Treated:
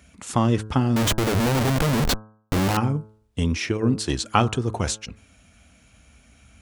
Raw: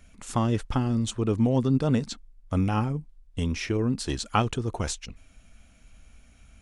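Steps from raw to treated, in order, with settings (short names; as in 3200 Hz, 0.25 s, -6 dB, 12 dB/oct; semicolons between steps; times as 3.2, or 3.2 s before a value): HPF 61 Hz 24 dB/oct; 0.96–2.77 Schmitt trigger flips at -36.5 dBFS; de-hum 108 Hz, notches 15; gain +5 dB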